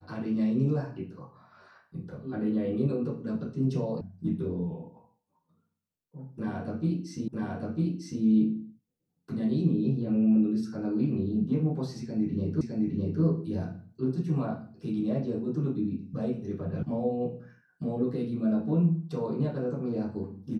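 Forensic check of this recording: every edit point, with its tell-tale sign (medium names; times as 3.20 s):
4.01 s: sound stops dead
7.28 s: repeat of the last 0.95 s
12.61 s: repeat of the last 0.61 s
16.83 s: sound stops dead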